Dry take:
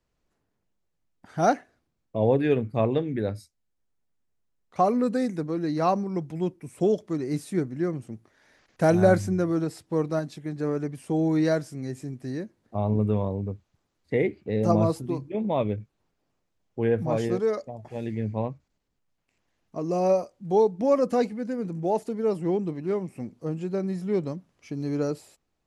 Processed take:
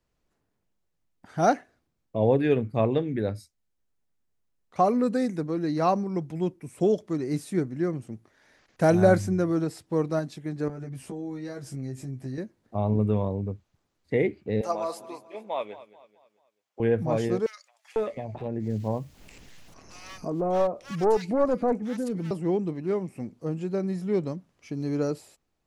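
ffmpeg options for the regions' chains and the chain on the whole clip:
-filter_complex "[0:a]asettb=1/sr,asplit=3[s0][s1][s2];[s0]atrim=end=10.684[s3];[s1]atrim=start=10.68:end=12.38,asetpts=PTS-STARTPTS,afade=t=in:d=0.004:c=qsin,afade=t=out:st=1.696:d=0.004:c=qsin,equalizer=f=77:t=o:w=1.5:g=8.5,acompressor=threshold=0.0178:ratio=5:attack=3.2:release=140:knee=1:detection=peak,asplit=2[s4][s5];[s5]adelay=15,volume=0.75[s6];[s4][s6]amix=inputs=2:normalize=0,atrim=end_sample=74970[s7];[s2]atrim=start=12.376[s8];[s3][s7]acrossfade=d=0.004:c1=hsin:c2=qsin[s9];[s9][s8]acrossfade=d=0.004:c1=qsin:c2=hsin,asettb=1/sr,asplit=3[s10][s11][s12];[s10]atrim=end=14.614[s13];[s11]atrim=start=14.61:end=16.8,asetpts=PTS-STARTPTS,afade=t=in:d=0.004:c=qsin,afade=t=out:st=2.186:d=0.004:c=qsin,highpass=730,aecho=1:1:218|436|654|872:0.15|0.0628|0.0264|0.0111,atrim=end_sample=96579[s14];[s12]atrim=start=16.796[s15];[s13][s14]acrossfade=d=0.004:c1=hsin:c2=qsin[s16];[s16][s15]acrossfade=d=0.004:c1=qsin:c2=hsin,asettb=1/sr,asplit=3[s17][s18][s19];[s17]atrim=end=17.464[s20];[s18]atrim=start=17.46:end=22.31,asetpts=PTS-STARTPTS,afade=t=in:d=0.004:c=qsin,afade=t=out:st=4.846:d=0.004:c=qsin,acompressor=mode=upward:threshold=0.0501:ratio=2.5:attack=3.2:release=140:knee=2.83:detection=peak,aeval=exprs='clip(val(0),-1,0.0596)':c=same,acrossover=split=1600[s21][s22];[s21]adelay=500[s23];[s23][s22]amix=inputs=2:normalize=0,atrim=end_sample=213885[s24];[s19]atrim=start=22.306[s25];[s20][s24]acrossfade=d=0.004:c1=hsin:c2=qsin[s26];[s26][s25]acrossfade=d=0.004:c1=qsin:c2=hsin"

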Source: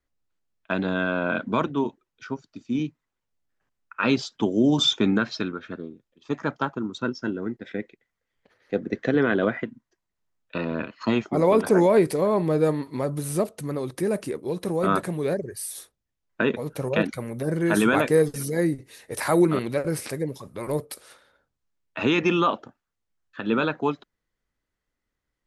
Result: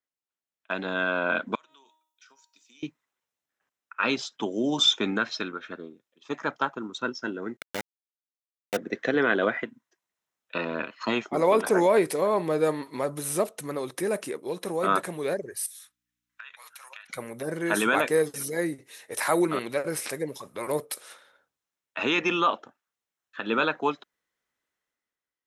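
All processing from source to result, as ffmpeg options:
-filter_complex "[0:a]asettb=1/sr,asplit=3[s0][s1][s2];[s0]atrim=end=1.554[s3];[s1]atrim=start=1.55:end=2.83,asetpts=PTS-STARTPTS,afade=t=in:d=0.004:c=qsin,afade=t=out:st=1.276:d=0.004:c=qsin,aderivative,bandreject=f=315:t=h:w=4,bandreject=f=630:t=h:w=4,bandreject=f=945:t=h:w=4,bandreject=f=1260:t=h:w=4,bandreject=f=1575:t=h:w=4,bandreject=f=1890:t=h:w=4,bandreject=f=2205:t=h:w=4,bandreject=f=2520:t=h:w=4,bandreject=f=2835:t=h:w=4,bandreject=f=3150:t=h:w=4,bandreject=f=3465:t=h:w=4,bandreject=f=3780:t=h:w=4,bandreject=f=4095:t=h:w=4,bandreject=f=4410:t=h:w=4,bandreject=f=4725:t=h:w=4,bandreject=f=5040:t=h:w=4,bandreject=f=5355:t=h:w=4,bandreject=f=5670:t=h:w=4,bandreject=f=5985:t=h:w=4,bandreject=f=6300:t=h:w=4,bandreject=f=6615:t=h:w=4,bandreject=f=6930:t=h:w=4,bandreject=f=7245:t=h:w=4,bandreject=f=7560:t=h:w=4,bandreject=f=7875:t=h:w=4,bandreject=f=8190:t=h:w=4,bandreject=f=8505:t=h:w=4,acompressor=threshold=0.002:ratio=8:attack=3.2:release=140:knee=1:detection=peak[s4];[s2]atrim=start=2.826[s5];[s3][s4]acrossfade=d=0.004:c1=hsin:c2=qsin[s6];[s6][s5]acrossfade=d=0.004:c1=qsin:c2=hsin,asettb=1/sr,asplit=3[s7][s8][s9];[s7]atrim=end=7.574[s10];[s8]atrim=start=7.57:end=8.77,asetpts=PTS-STARTPTS,afade=t=in:d=0.004:c=qsin,afade=t=out:st=1.196:d=0.004:c=qsin,aeval=exprs='val(0)*gte(abs(val(0)),0.0501)':c=same,aecho=1:1:1.4:0.55,atrim=end_sample=52920[s11];[s9]atrim=start=8.766[s12];[s10][s11]acrossfade=d=0.004:c1=hsin:c2=qsin[s13];[s13][s12]acrossfade=d=0.004:c1=qsin:c2=hsin,asettb=1/sr,asplit=3[s14][s15][s16];[s14]atrim=end=15.664[s17];[s15]atrim=start=15.66:end=17.1,asetpts=PTS-STARTPTS,afade=t=in:d=0.004:c=qsin,afade=t=out:st=1.436:d=0.004:c=qsin,highpass=f=1200:w=0.5412,highpass=f=1200:w=1.3066,acompressor=threshold=0.00562:ratio=6:attack=3.2:release=140:knee=1:detection=peak,aeval=exprs='val(0)+0.000126*(sin(2*PI*60*n/s)+sin(2*PI*2*60*n/s)/2+sin(2*PI*3*60*n/s)/3+sin(2*PI*4*60*n/s)/4+sin(2*PI*5*60*n/s)/5)':c=same[s18];[s16]atrim=start=17.096[s19];[s17][s18]acrossfade=d=0.004:c1=hsin:c2=qsin[s20];[s20][s19]acrossfade=d=0.004:c1=qsin:c2=hsin,highpass=f=660:p=1,bandreject=f=4600:w=12,dynaudnorm=f=110:g=13:m=3.76,volume=0.422"

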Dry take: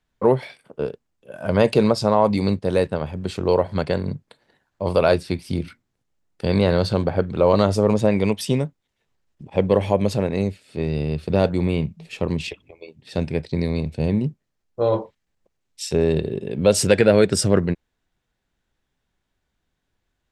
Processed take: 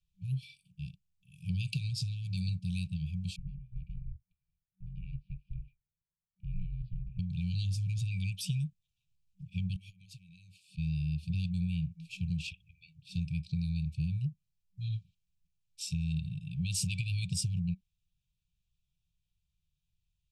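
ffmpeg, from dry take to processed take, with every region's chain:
-filter_complex "[0:a]asettb=1/sr,asplit=3[s0][s1][s2];[s0]atrim=end=3.364[s3];[s1]atrim=start=3.36:end=7.19,asetpts=PTS-STARTPTS,afade=t=in:d=0.004:c=qsin,afade=t=out:st=3.826:d=0.004:c=qsin,lowpass=f=1500:w=0.5412,lowpass=f=1500:w=1.3066,aeval=exprs='val(0)*sin(2*PI*220*n/s)':c=same,equalizer=f=100:t=o:w=2.4:g=-7.5[s4];[s2]atrim=start=7.186[s5];[s3][s4]acrossfade=d=0.004:c1=hsin:c2=qsin[s6];[s6][s5]acrossfade=d=0.004:c1=qsin:c2=hsin,asettb=1/sr,asplit=3[s7][s8][s9];[s7]atrim=end=9.764[s10];[s8]atrim=start=9.76:end=10.78,asetpts=PTS-STARTPTS,afade=t=in:d=0.004:c=qsin,afade=t=out:st=1.016:d=0.004:c=qsin,highpass=f=370:p=1,acompressor=threshold=0.0158:ratio=10:attack=3.2:release=140:knee=1:detection=peak[s11];[s9]atrim=start=10.776[s12];[s10][s11]acrossfade=d=0.004:c1=hsin:c2=qsin[s13];[s13][s12]acrossfade=d=0.004:c1=qsin:c2=hsin,afftfilt=real='re*(1-between(b*sr/4096,190,2300))':imag='im*(1-between(b*sr/4096,190,2300))':win_size=4096:overlap=0.75,lowshelf=f=340:g=5.5,acompressor=threshold=0.1:ratio=6,volume=0.355"

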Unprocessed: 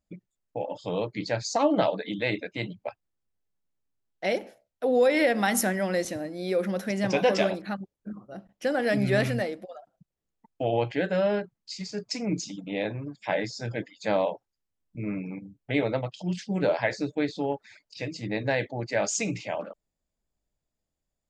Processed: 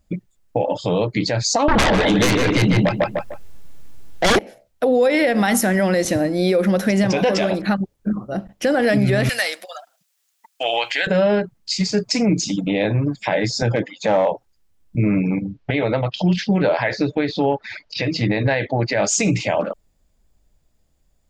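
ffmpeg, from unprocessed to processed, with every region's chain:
-filter_complex "[0:a]asettb=1/sr,asplit=3[s0][s1][s2];[s0]atrim=end=1.684[s3];[s1]atrim=start=1.68:end=4.39,asetpts=PTS-STARTPTS,afade=t=in:d=0.004:c=qsin,afade=t=out:st=2.706:d=0.004:c=qsin,aeval=exprs='0.251*sin(PI/2*5.62*val(0)/0.251)':c=same,asplit=2[s4][s5];[s5]adelay=150,lowpass=f=2400:p=1,volume=0.631,asplit=2[s6][s7];[s7]adelay=150,lowpass=f=2400:p=1,volume=0.25,asplit=2[s8][s9];[s9]adelay=150,lowpass=f=2400:p=1,volume=0.25[s10];[s4][s6][s8][s10]amix=inputs=4:normalize=0,atrim=end_sample=119511[s11];[s2]atrim=start=4.386[s12];[s3][s11]acrossfade=d=0.004:c1=hsin:c2=qsin[s13];[s13][s12]acrossfade=d=0.004:c1=qsin:c2=hsin,asettb=1/sr,asplit=3[s14][s15][s16];[s14]atrim=end=9.294[s17];[s15]atrim=start=9.29:end=11.07,asetpts=PTS-STARTPTS,afade=t=in:d=0.004:c=qsin,afade=t=out:st=1.776:d=0.004:c=qsin,highpass=1100,highshelf=f=2500:g=11.5[s18];[s16]atrim=start=11.066[s19];[s17][s18]acrossfade=d=0.004:c1=hsin:c2=qsin[s20];[s20][s19]acrossfade=d=0.004:c1=qsin:c2=hsin,asettb=1/sr,asplit=3[s21][s22][s23];[s21]atrim=end=13.624[s24];[s22]atrim=start=13.62:end=14.32,asetpts=PTS-STARTPTS,afade=t=in:d=0.004:c=qsin,afade=t=out:st=0.696:d=0.004:c=qsin,asoftclip=type=hard:threshold=0.1,highpass=120,equalizer=f=530:t=q:w=4:g=5,equalizer=f=840:t=q:w=4:g=7,equalizer=f=1200:t=q:w=4:g=3,equalizer=f=4700:t=q:w=4:g=-9,lowpass=f=6500:w=0.5412,lowpass=f=6500:w=1.3066[s25];[s23]atrim=start=14.316[s26];[s24][s25]acrossfade=d=0.004:c1=hsin:c2=qsin[s27];[s27][s26]acrossfade=d=0.004:c1=qsin:c2=hsin,asettb=1/sr,asplit=3[s28][s29][s30];[s28]atrim=end=15.414[s31];[s29]atrim=start=15.41:end=18.96,asetpts=PTS-STARTPTS,afade=t=in:d=0.004:c=qsin,afade=t=out:st=3.546:d=0.004:c=qsin,lowpass=f=5300:w=0.5412,lowpass=f=5300:w=1.3066,equalizer=f=1500:w=0.36:g=5[s32];[s30]atrim=start=18.956[s33];[s31][s32]acrossfade=d=0.004:c1=hsin:c2=qsin[s34];[s34][s33]acrossfade=d=0.004:c1=qsin:c2=hsin,lowshelf=f=99:g=9.5,acompressor=threshold=0.0355:ratio=3,alimiter=level_in=14.1:limit=0.891:release=50:level=0:latency=1,volume=0.398"

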